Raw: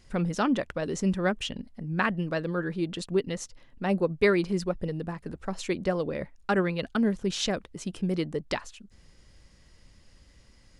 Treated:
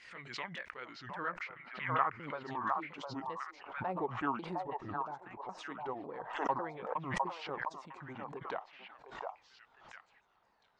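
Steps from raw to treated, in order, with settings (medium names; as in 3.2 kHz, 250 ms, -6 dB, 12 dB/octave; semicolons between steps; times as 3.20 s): sawtooth pitch modulation -8 st, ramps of 549 ms; band-pass sweep 2.1 kHz -> 880 Hz, 0.48–2.61 s; on a send: repeats whose band climbs or falls 707 ms, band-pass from 810 Hz, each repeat 1.4 oct, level -0.5 dB; on the sum: swell ahead of each attack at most 76 dB/s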